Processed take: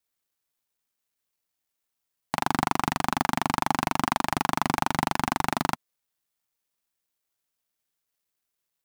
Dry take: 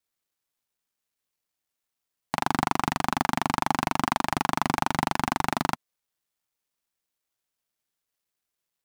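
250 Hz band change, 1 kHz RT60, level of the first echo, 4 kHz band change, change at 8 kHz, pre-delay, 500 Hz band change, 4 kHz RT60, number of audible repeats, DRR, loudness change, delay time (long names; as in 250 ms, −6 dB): 0.0 dB, no reverb audible, no echo audible, +0.5 dB, +1.0 dB, no reverb audible, 0.0 dB, no reverb audible, no echo audible, no reverb audible, 0.0 dB, no echo audible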